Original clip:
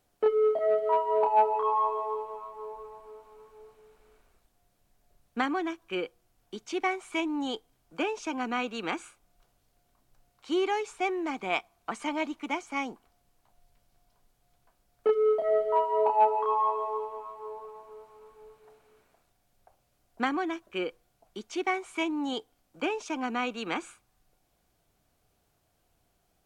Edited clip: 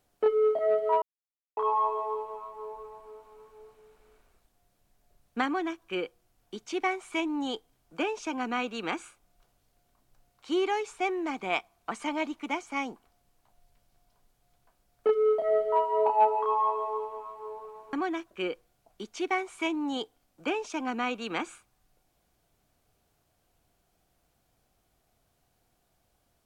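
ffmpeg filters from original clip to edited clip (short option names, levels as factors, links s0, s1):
-filter_complex "[0:a]asplit=4[s0][s1][s2][s3];[s0]atrim=end=1.02,asetpts=PTS-STARTPTS,afade=t=out:st=1.016:d=0.004:c=hsin[s4];[s1]atrim=start=1.02:end=1.57,asetpts=PTS-STARTPTS,volume=0[s5];[s2]atrim=start=1.57:end=17.932,asetpts=PTS-STARTPTS,afade=t=in:d=0.004:c=hsin[s6];[s3]atrim=start=20.288[s7];[s4][s5][s6]concat=n=3:v=0:a=1[s8];[s8][s7]acrossfade=d=0.004:c1=hsin:c2=hsin"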